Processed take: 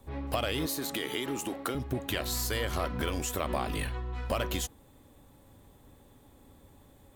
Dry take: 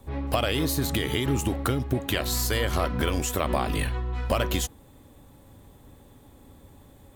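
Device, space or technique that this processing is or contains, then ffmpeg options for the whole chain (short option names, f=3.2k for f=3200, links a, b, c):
parallel distortion: -filter_complex "[0:a]asettb=1/sr,asplit=3[a][b][c];[a]atrim=end=0.664[d];[b]atrim=start=0.66:end=1.75,asetpts=PTS-STARTPTS,afade=t=in:d=0.004:c=qsin,afade=t=out:st=1.086:d=0.004:c=qsin,highpass=250[e];[c]atrim=start=1.746[f];[d][e]acrossfade=d=0.004:c1=hsin:c2=qsin[g];[g][f]acrossfade=d=0.004:c1=qsin:c2=hsin,asplit=2[h][i];[i]asoftclip=type=hard:threshold=-25.5dB,volume=-10.5dB[j];[h][j]amix=inputs=2:normalize=0,equalizer=f=91:w=0.4:g=-2.5,volume=-6.5dB"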